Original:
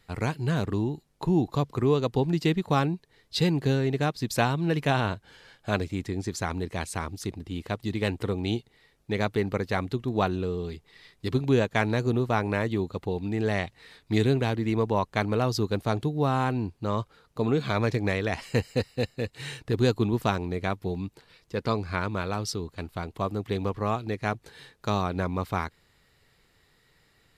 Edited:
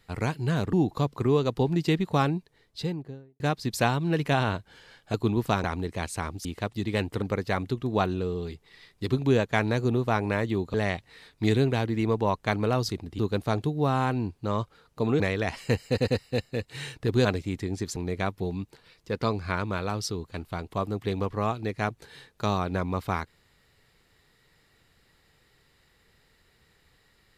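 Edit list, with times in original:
0.73–1.30 s: delete
2.90–3.97 s: studio fade out
5.71–6.42 s: swap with 19.90–20.40 s
7.23–7.53 s: move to 15.58 s
8.30–9.44 s: delete
12.96–13.43 s: delete
17.59–18.05 s: delete
18.73 s: stutter 0.10 s, 3 plays

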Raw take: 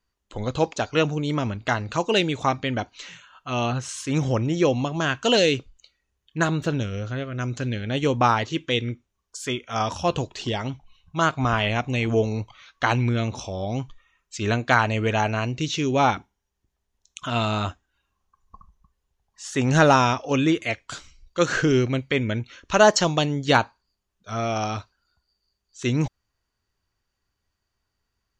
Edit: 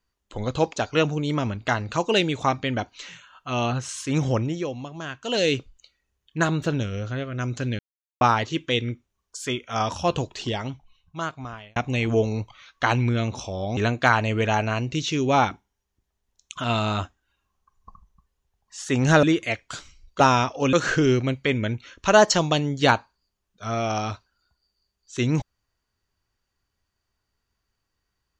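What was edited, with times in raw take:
4.38–5.54 s: dip -10 dB, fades 0.27 s
7.79–8.21 s: mute
10.39–11.76 s: fade out
13.77–14.43 s: delete
19.89–20.42 s: move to 21.39 s

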